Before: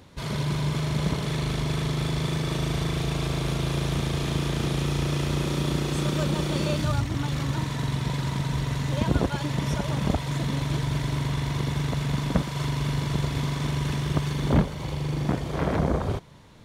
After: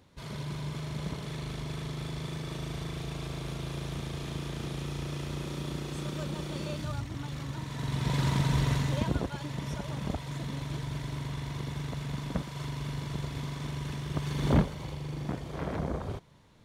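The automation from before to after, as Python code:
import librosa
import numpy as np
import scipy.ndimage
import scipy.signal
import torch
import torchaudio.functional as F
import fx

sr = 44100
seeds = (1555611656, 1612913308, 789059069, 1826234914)

y = fx.gain(x, sr, db=fx.line((7.63, -10.0), (8.21, 0.5), (8.72, 0.5), (9.26, -9.0), (14.09, -9.0), (14.49, -2.0), (15.0, -9.0)))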